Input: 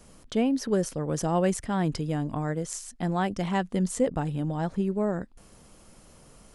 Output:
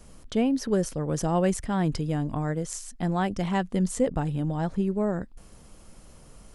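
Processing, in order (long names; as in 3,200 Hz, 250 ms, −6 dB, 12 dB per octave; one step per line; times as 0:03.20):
low-shelf EQ 84 Hz +8 dB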